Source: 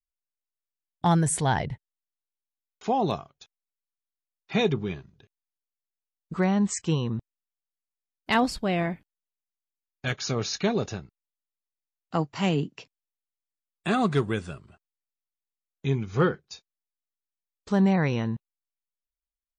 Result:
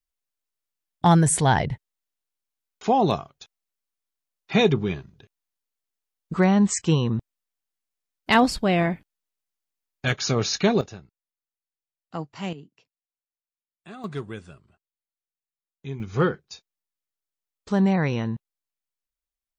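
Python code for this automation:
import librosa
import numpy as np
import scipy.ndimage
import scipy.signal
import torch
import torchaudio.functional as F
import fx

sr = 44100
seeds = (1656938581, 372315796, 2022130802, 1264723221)

y = fx.gain(x, sr, db=fx.steps((0.0, 5.0), (10.81, -6.0), (12.53, -17.0), (14.04, -8.0), (16.0, 1.0)))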